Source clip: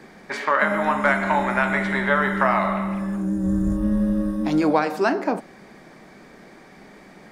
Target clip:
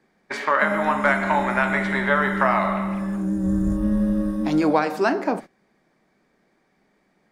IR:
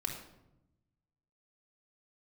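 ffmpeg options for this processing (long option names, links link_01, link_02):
-af "agate=range=-19dB:threshold=-33dB:ratio=16:detection=peak"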